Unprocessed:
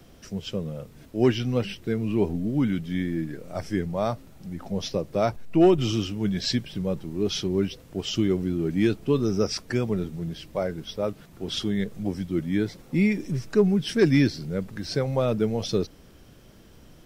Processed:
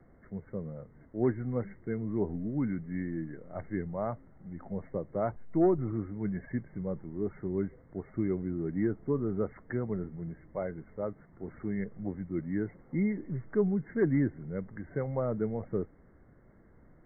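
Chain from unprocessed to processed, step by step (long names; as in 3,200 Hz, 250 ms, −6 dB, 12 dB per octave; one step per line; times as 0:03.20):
linear-phase brick-wall low-pass 2,200 Hz
treble cut that deepens with the level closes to 1,700 Hz, closed at −17 dBFS
level −7.5 dB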